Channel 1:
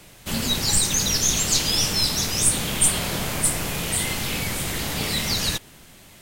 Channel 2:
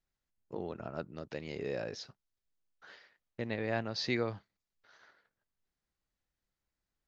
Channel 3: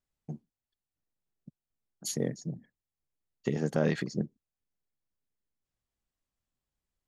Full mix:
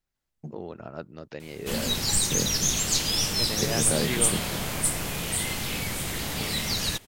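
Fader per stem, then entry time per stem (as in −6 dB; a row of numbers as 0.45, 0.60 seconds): −4.0, +2.0, 0.0 decibels; 1.40, 0.00, 0.15 seconds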